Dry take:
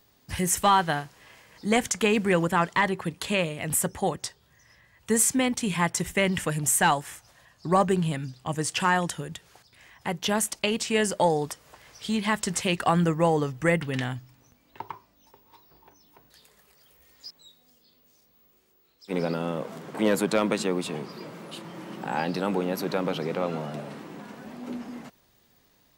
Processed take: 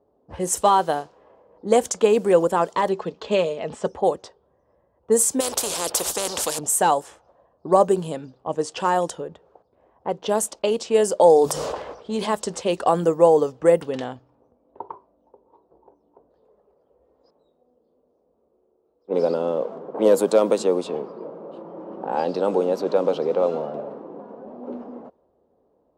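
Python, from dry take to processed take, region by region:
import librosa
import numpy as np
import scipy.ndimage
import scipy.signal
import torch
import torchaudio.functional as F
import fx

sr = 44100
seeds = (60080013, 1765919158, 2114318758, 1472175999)

y = fx.chain(x, sr, fx.lowpass(hz=6400.0, slope=24),
    fx.high_shelf(hz=3500.0, db=6.0),
    fx.comb(ms=4.7, depth=0.36), at=(2.89, 3.88))
y = fx.chain(y, sr, fx.high_shelf(hz=2800.0, db=7.5),
    fx.spectral_comp(ratio=4.0), at=(5.4, 6.59))
y = fx.chain(y, sr, fx.hum_notches(base_hz=50, count=4),
    fx.sustainer(db_per_s=28.0), at=(11.18, 12.35))
y = scipy.signal.sosfilt(scipy.signal.butter(2, 60.0, 'highpass', fs=sr, output='sos'), y)
y = fx.env_lowpass(y, sr, base_hz=730.0, full_db=-20.5)
y = fx.graphic_eq(y, sr, hz=(125, 500, 1000, 2000, 8000), db=(-11, 11, 3, -11, 3))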